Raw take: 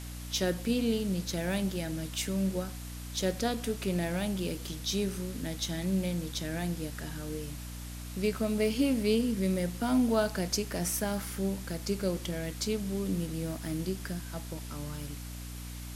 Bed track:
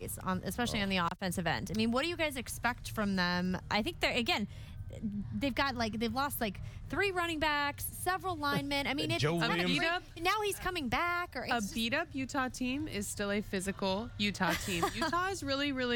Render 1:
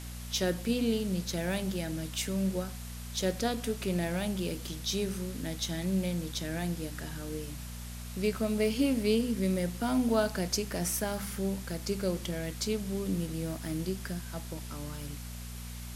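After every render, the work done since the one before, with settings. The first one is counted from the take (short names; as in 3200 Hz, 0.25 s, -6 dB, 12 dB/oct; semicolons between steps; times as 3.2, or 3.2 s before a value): de-hum 50 Hz, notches 6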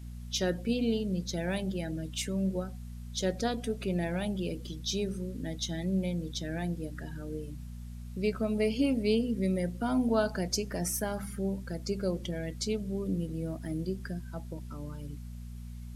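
denoiser 15 dB, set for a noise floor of -42 dBFS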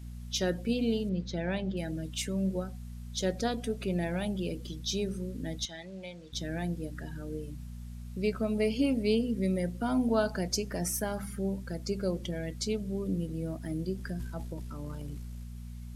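1.09–1.77 LPF 3800 Hz; 5.65–6.33 three-band isolator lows -16 dB, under 580 Hz, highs -20 dB, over 7100 Hz; 13.95–15.44 transient shaper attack +1 dB, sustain +9 dB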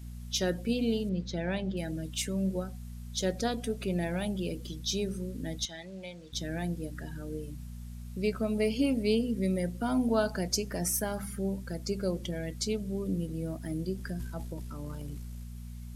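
high shelf 7600 Hz +5 dB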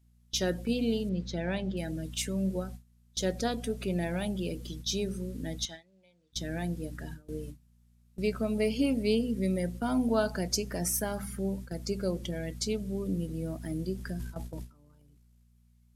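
gate with hold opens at -29 dBFS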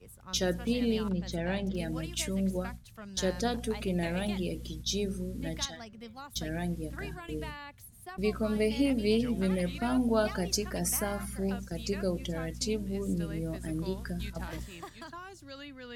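add bed track -12.5 dB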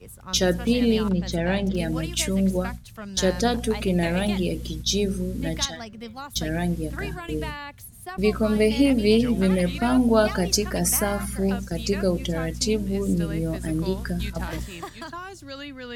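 gain +8.5 dB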